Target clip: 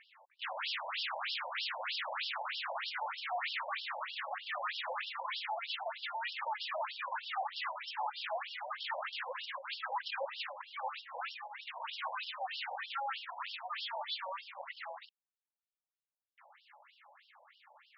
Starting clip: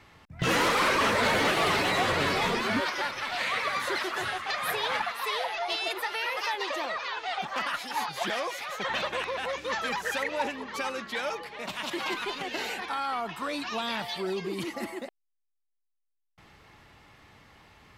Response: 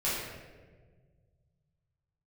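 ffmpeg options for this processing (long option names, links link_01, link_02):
-af "tiltshelf=frequency=1100:gain=3,aeval=exprs='0.0376*(abs(mod(val(0)/0.0376+3,4)-2)-1)':channel_layout=same,afftfilt=real='re*between(b*sr/1024,690*pow(4000/690,0.5+0.5*sin(2*PI*3.2*pts/sr))/1.41,690*pow(4000/690,0.5+0.5*sin(2*PI*3.2*pts/sr))*1.41)':imag='im*between(b*sr/1024,690*pow(4000/690,0.5+0.5*sin(2*PI*3.2*pts/sr))/1.41,690*pow(4000/690,0.5+0.5*sin(2*PI*3.2*pts/sr))*1.41)':win_size=1024:overlap=0.75,volume=1dB"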